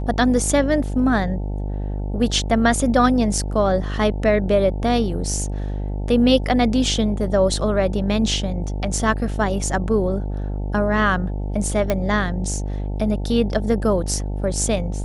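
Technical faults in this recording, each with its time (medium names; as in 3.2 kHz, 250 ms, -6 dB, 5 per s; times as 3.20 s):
buzz 50 Hz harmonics 18 -25 dBFS
11.90 s: pop -7 dBFS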